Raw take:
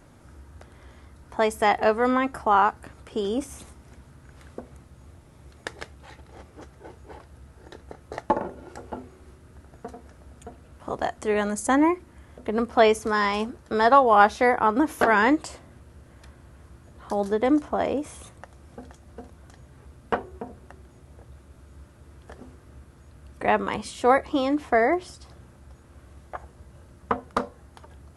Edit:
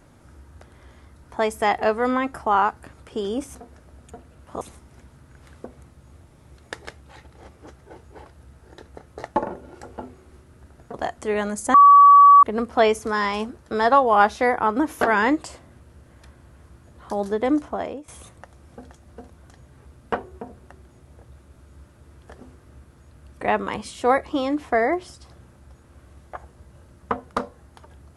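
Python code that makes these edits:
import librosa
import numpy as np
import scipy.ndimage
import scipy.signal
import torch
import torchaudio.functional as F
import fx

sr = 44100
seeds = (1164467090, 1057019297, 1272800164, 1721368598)

y = fx.edit(x, sr, fx.move(start_s=9.88, length_s=1.06, to_s=3.55),
    fx.bleep(start_s=11.74, length_s=0.69, hz=1140.0, db=-6.5),
    fx.fade_out_to(start_s=17.64, length_s=0.44, floor_db=-15.5), tone=tone)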